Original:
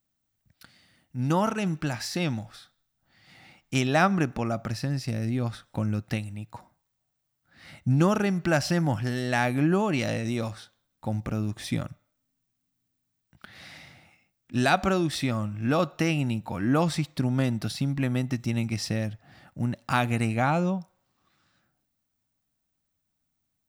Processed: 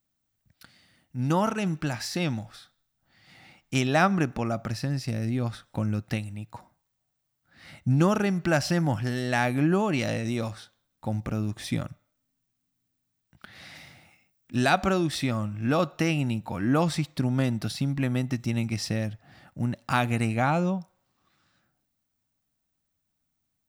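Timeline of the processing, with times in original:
13.75–14.56 high shelf 8400 Hz +7 dB

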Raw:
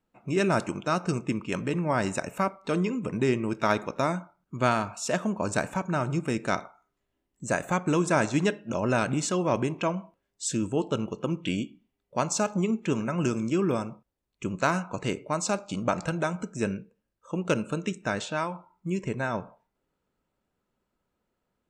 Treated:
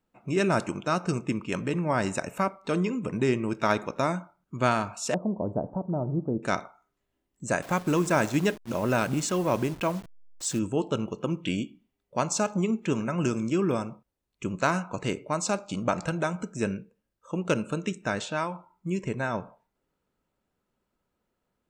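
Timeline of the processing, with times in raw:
5.14–6.43 inverse Chebyshev low-pass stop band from 2000 Hz, stop band 50 dB
7.62–10.59 level-crossing sampler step -39.5 dBFS

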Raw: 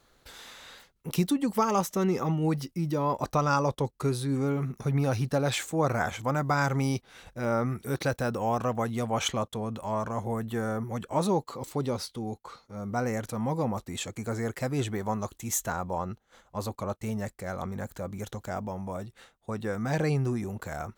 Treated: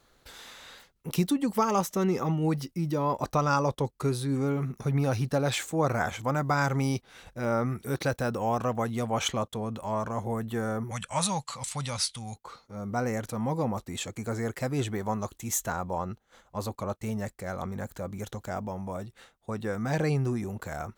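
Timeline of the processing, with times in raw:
10.91–12.36 EQ curve 140 Hz 0 dB, 200 Hz -4 dB, 380 Hz -21 dB, 560 Hz -5 dB, 1300 Hz +3 dB, 2500 Hz +10 dB, 4500 Hz +8 dB, 9600 Hz +14 dB, 15000 Hz -15 dB

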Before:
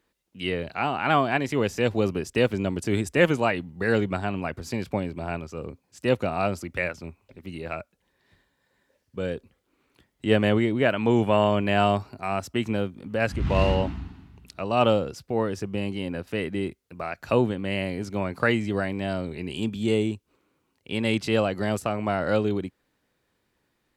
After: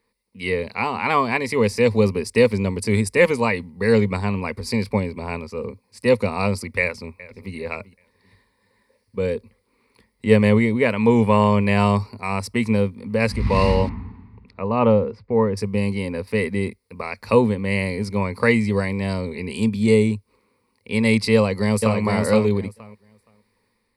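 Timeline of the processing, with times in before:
6.8–7.54 echo throw 0.39 s, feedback 30%, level -18 dB
13.89–15.57 LPF 1800 Hz
21.35–22 echo throw 0.47 s, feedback 15%, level -3 dB
whole clip: dynamic EQ 7200 Hz, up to +6 dB, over -48 dBFS, Q 0.78; AGC gain up to 4 dB; ripple EQ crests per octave 0.91, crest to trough 13 dB; gain -1 dB

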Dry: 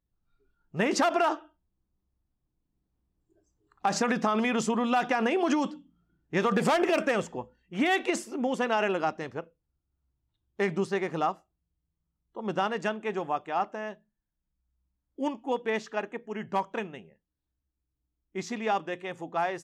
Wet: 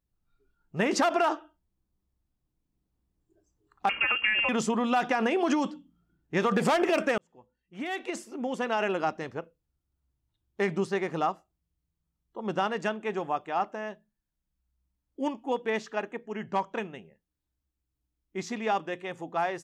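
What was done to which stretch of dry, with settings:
3.89–4.49 inverted band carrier 3000 Hz
7.18–9.09 fade in
16.23–16.78 LPF 8300 Hz 24 dB/oct

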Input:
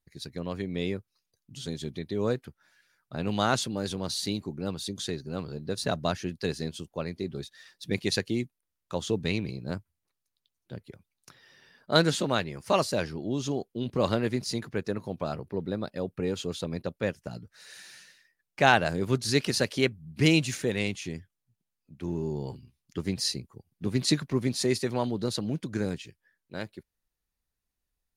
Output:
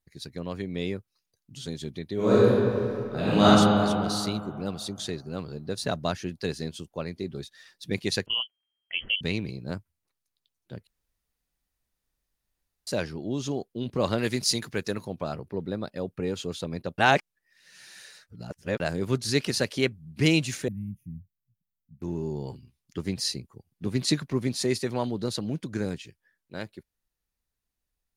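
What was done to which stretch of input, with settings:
2.14–3.46 reverb throw, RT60 2.6 s, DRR -10 dB
8.26–9.21 inverted band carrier 3200 Hz
10.87–12.87 room tone
14.18–15.05 high shelf 2200 Hz +11.5 dB
16.98–18.8 reverse
20.68–22.02 inverse Chebyshev band-stop 400–8100 Hz

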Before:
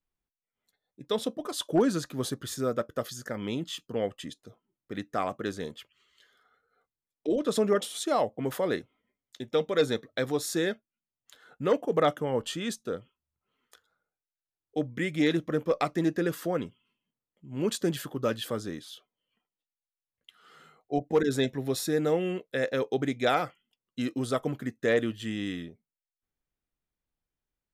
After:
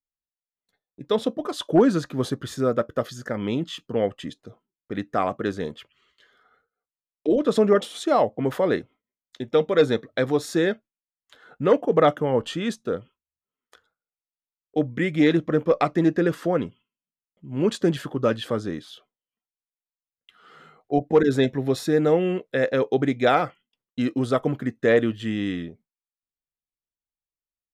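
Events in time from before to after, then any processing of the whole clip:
15.36–18.75 LPF 12000 Hz
whole clip: gate with hold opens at -57 dBFS; LPF 2400 Hz 6 dB/oct; gain +7 dB

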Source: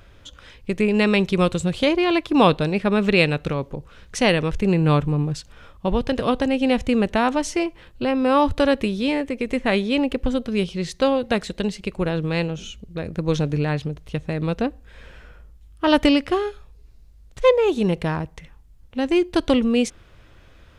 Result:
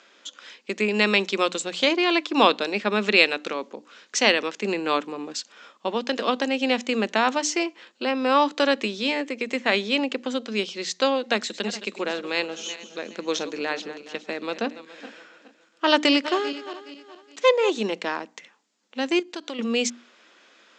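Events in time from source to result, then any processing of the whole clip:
11.3–17.79 regenerating reverse delay 0.209 s, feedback 55%, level -13.5 dB
19.19–19.59 compressor 2.5:1, threshold -32 dBFS
whole clip: Chebyshev band-pass 210–7400 Hz, order 5; tilt +2.5 dB/oct; notches 60/120/180/240/300 Hz

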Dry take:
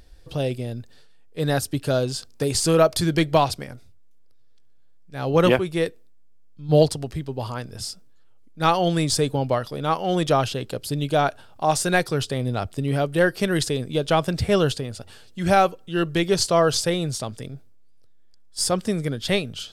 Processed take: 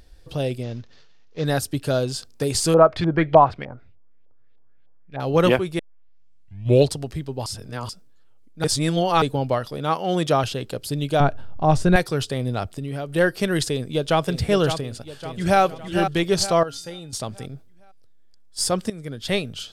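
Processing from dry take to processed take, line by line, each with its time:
0.63–1.45 CVSD 32 kbps
2.74–5.2 LFO low-pass saw up 3.3 Hz 730–3100 Hz
5.79 tape start 1.14 s
7.46–7.89 reverse
8.64–9.22 reverse
9.78–10.44 HPF 60 Hz
11.2–11.96 RIAA curve playback
12.65–13.16 compressor 5:1, threshold -26 dBFS
13.71–14.24 echo throw 0.56 s, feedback 45%, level -8.5 dB
14.77–15.61 echo throw 0.46 s, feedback 40%, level -7 dB
16.63–17.13 resonator 280 Hz, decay 0.32 s, harmonics odd, mix 80%
18.9–19.41 fade in, from -16 dB

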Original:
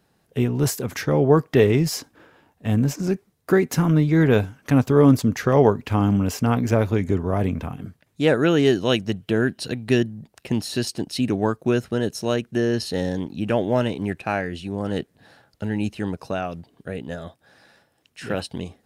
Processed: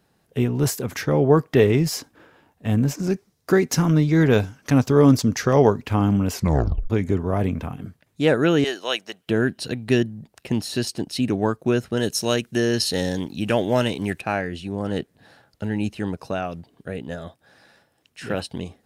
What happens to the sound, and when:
3.1–5.83 bell 5500 Hz +8 dB 0.86 oct
6.33 tape stop 0.57 s
8.64–9.27 HPF 700 Hz
11.97–14.21 high shelf 2400 Hz +10 dB

